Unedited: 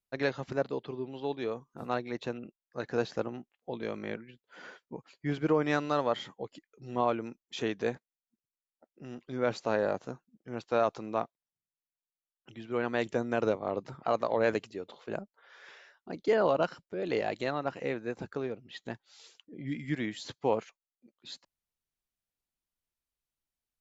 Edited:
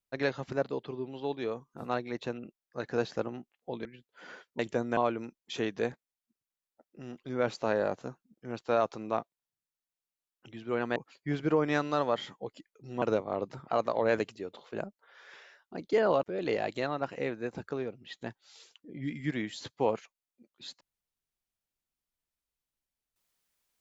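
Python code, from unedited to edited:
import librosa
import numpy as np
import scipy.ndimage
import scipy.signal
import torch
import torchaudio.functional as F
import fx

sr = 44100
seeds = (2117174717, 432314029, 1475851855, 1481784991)

y = fx.edit(x, sr, fx.cut(start_s=3.85, length_s=0.35),
    fx.swap(start_s=4.94, length_s=2.06, other_s=12.99, other_length_s=0.38),
    fx.cut(start_s=16.58, length_s=0.29), tone=tone)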